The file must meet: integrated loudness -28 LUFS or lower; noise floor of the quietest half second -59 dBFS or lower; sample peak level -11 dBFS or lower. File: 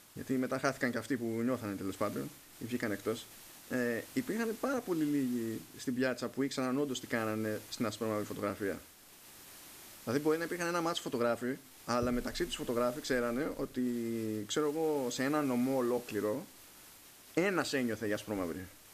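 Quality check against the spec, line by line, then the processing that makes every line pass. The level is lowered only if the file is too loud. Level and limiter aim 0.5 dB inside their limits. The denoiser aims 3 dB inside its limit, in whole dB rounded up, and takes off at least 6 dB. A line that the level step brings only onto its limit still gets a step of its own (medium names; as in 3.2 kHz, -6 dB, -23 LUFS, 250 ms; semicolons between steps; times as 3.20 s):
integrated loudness -35.0 LUFS: pass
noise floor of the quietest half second -57 dBFS: fail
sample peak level -15.5 dBFS: pass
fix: noise reduction 6 dB, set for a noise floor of -57 dBFS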